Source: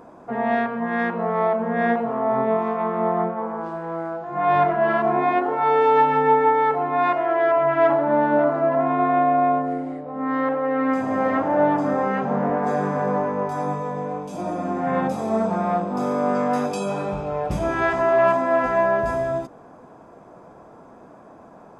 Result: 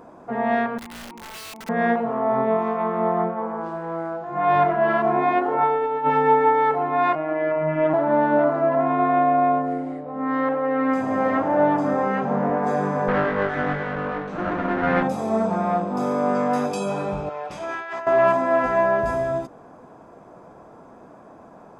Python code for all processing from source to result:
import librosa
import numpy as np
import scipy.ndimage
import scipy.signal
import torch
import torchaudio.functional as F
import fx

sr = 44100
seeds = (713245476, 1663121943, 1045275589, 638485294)

y = fx.chain(x, sr, fx.vowel_filter(vowel='u'),
    fx.overflow_wrap(gain_db=33.0), at=(0.78, 1.69))
y = fx.chain(y, sr, fx.lowpass(hz=1900.0, slope=6),
    fx.over_compress(threshold_db=-20.0, ratio=-0.5), at=(5.54, 6.1))
y = fx.chain(y, sr, fx.bass_treble(bass_db=9, treble_db=-12),
    fx.robotise(hz=156.0), at=(7.15, 7.94))
y = fx.chain(y, sr, fx.lower_of_two(delay_ms=0.51),
    fx.lowpass(hz=3000.0, slope=12),
    fx.peak_eq(hz=1000.0, db=6.5, octaves=2.5), at=(13.08, 15.03))
y = fx.chain(y, sr, fx.highpass(hz=1400.0, slope=6),
    fx.over_compress(threshold_db=-30.0, ratio=-1.0),
    fx.air_absorb(metres=64.0), at=(17.29, 18.07))